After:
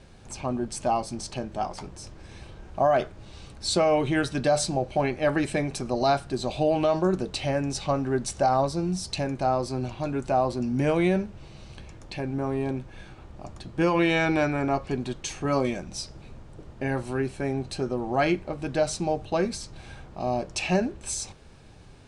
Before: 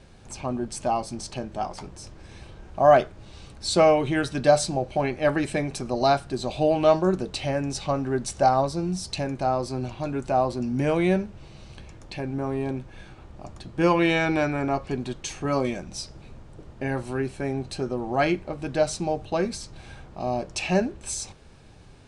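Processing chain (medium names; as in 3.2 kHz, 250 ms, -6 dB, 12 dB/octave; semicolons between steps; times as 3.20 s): peak limiter -13.5 dBFS, peak gain reduction 8 dB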